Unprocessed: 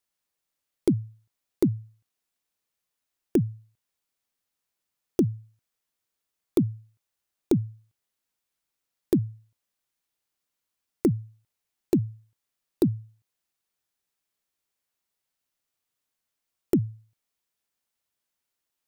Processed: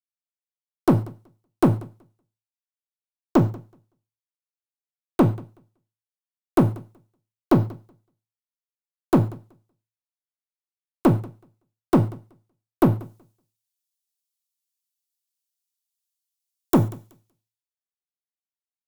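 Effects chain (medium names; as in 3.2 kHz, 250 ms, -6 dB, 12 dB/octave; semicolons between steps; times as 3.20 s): 13.00–16.84 s: treble shelf 2.8 kHz +11.5 dB; one-sided clip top -27.5 dBFS, bottom -16.5 dBFS; peaking EQ 840 Hz +6 dB 1.1 oct; feedback delay 188 ms, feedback 37%, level -18 dB; gated-style reverb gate 160 ms falling, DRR 8 dB; three bands expanded up and down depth 100%; trim +1.5 dB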